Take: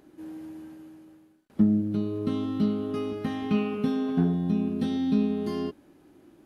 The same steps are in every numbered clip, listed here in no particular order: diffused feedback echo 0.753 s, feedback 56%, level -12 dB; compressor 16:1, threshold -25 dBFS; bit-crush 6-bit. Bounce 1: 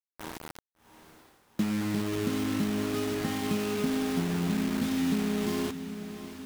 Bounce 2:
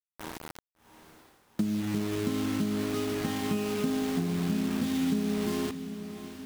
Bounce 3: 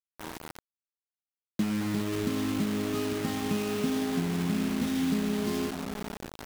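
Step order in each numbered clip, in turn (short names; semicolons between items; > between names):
compressor > bit-crush > diffused feedback echo; bit-crush > compressor > diffused feedback echo; compressor > diffused feedback echo > bit-crush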